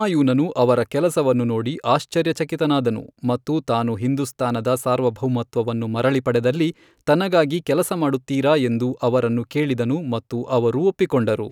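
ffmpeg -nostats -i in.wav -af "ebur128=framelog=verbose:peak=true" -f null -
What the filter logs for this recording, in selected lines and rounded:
Integrated loudness:
  I:         -20.7 LUFS
  Threshold: -30.6 LUFS
Loudness range:
  LRA:         1.9 LU
  Threshold: -40.9 LUFS
  LRA low:   -21.9 LUFS
  LRA high:  -20.0 LUFS
True peak:
  Peak:       -3.4 dBFS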